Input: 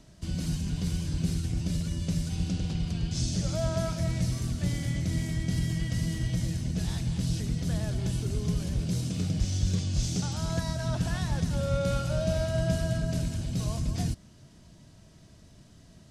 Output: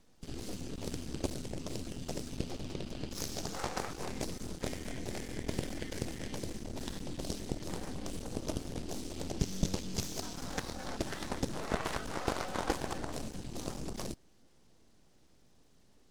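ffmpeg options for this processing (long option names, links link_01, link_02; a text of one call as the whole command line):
ffmpeg -i in.wav -af "acontrast=39,aeval=exprs='abs(val(0))':channel_layout=same,aeval=exprs='0.355*(cos(1*acos(clip(val(0)/0.355,-1,1)))-cos(1*PI/2))+0.0708*(cos(3*acos(clip(val(0)/0.355,-1,1)))-cos(3*PI/2))+0.0501*(cos(8*acos(clip(val(0)/0.355,-1,1)))-cos(8*PI/2))':channel_layout=same,volume=-4.5dB" out.wav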